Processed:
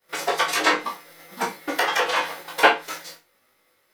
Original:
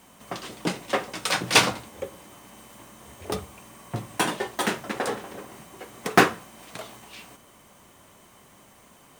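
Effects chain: frequency axis rescaled in octaves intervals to 87%; expander -43 dBFS; low-pass that closes with the level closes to 790 Hz, closed at -24 dBFS; Schroeder reverb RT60 0.59 s, combs from 26 ms, DRR -1 dB; speed mistake 33 rpm record played at 78 rpm; trim +7 dB

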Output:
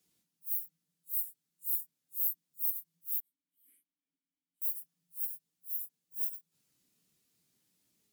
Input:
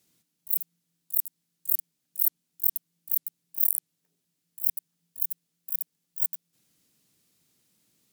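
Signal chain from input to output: phase randomisation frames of 100 ms; 3.20–4.62 s: vowel filter i; trim -6.5 dB

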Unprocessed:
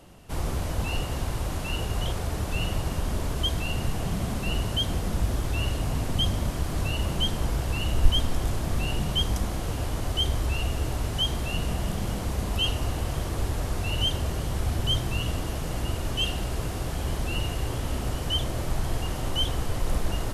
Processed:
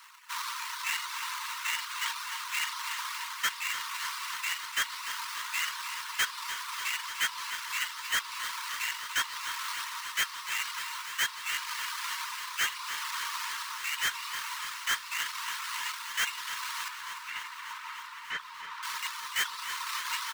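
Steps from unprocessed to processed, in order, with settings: median filter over 5 samples; sample-rate reducer 4.9 kHz, jitter 20%; Chebyshev high-pass 920 Hz, order 10; saturation -26 dBFS, distortion -12 dB; dynamic bell 4.3 kHz, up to +4 dB, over -47 dBFS, Q 0.97; gain riding within 4 dB 0.5 s; on a send at -23.5 dB: reverberation RT60 1.7 s, pre-delay 19 ms; on the sum: reverb removal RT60 0.72 s; 16.88–18.83 s: tape spacing loss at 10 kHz 29 dB; delay 334 ms -17 dB; bit-crushed delay 296 ms, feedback 80%, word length 11-bit, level -11 dB; trim +4.5 dB

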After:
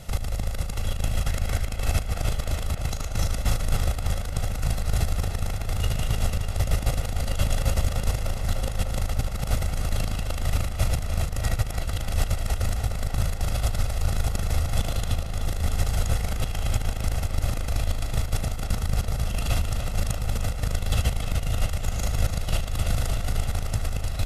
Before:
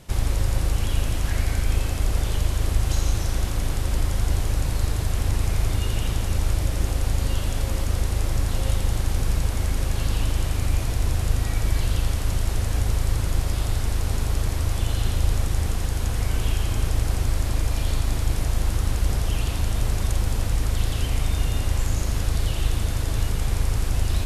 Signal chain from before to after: comb 1.5 ms, depth 61%; compressor with a negative ratio -21 dBFS, ratio -0.5; tape echo 299 ms, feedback 81%, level -7 dB, low-pass 5.1 kHz; trim -1.5 dB

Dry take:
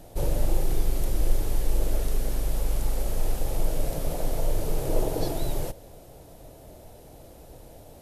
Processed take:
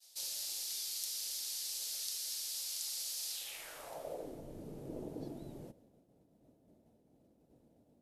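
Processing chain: expander -42 dBFS; band-pass sweep 4.7 kHz -> 230 Hz, 3.30–4.43 s; pre-emphasis filter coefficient 0.9; trim +13 dB

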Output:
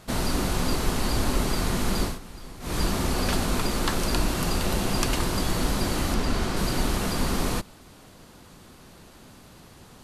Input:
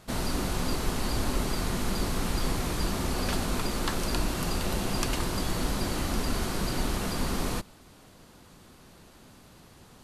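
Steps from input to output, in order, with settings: 2.02–2.77 s: dip -17 dB, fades 0.17 s; 6.14–6.57 s: treble shelf 9.4 kHz -12 dB; trim +4 dB

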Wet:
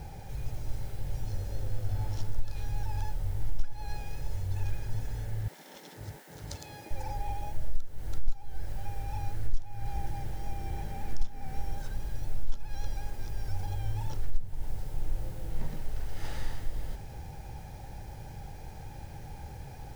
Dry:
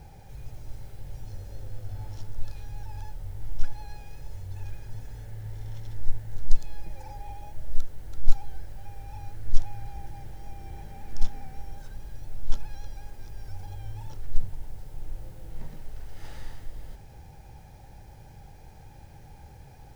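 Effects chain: 5.48–6.91 s: spectral gate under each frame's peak -30 dB weak; compression 6:1, threshold -24 dBFS, peak gain reduction 18 dB; trim +5 dB

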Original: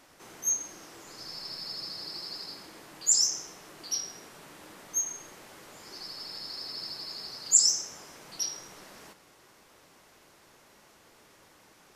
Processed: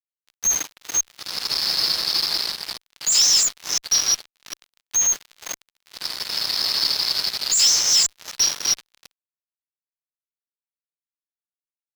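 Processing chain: chunks repeated in reverse 252 ms, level -2.5 dB; fuzz box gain 35 dB, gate -38 dBFS; FFT filter 360 Hz 0 dB, 3.9 kHz +12 dB, 8.5 kHz +1 dB; trim -7 dB

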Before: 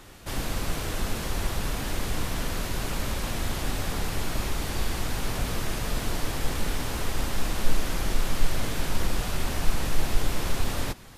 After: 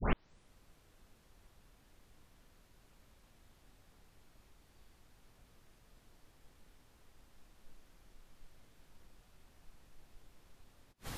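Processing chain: tape start-up on the opening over 0.55 s; inverted gate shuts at -22 dBFS, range -40 dB; trim +4.5 dB

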